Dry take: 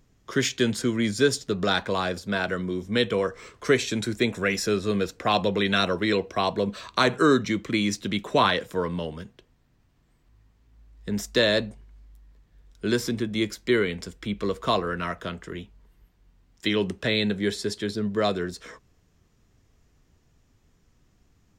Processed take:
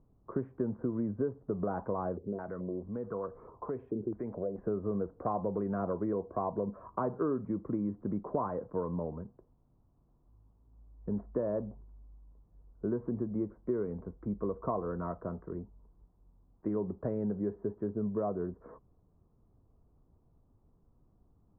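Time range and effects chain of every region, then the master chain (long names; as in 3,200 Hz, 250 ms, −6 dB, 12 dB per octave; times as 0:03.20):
0:02.17–0:04.58: downward compressor 2 to 1, threshold −37 dBFS + low-pass on a step sequencer 4.6 Hz 400–7,400 Hz
whole clip: de-essing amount 55%; Butterworth low-pass 1,100 Hz 36 dB per octave; downward compressor 4 to 1, threshold −26 dBFS; level −3.5 dB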